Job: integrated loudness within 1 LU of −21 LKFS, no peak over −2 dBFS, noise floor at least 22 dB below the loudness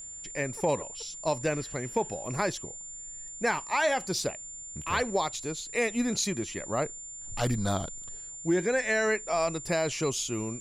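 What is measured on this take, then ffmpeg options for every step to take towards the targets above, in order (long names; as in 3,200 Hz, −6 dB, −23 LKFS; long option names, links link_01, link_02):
interfering tone 7,200 Hz; level of the tone −40 dBFS; integrated loudness −30.5 LKFS; sample peak −14.5 dBFS; target loudness −21.0 LKFS
→ -af "bandreject=frequency=7200:width=30"
-af "volume=9.5dB"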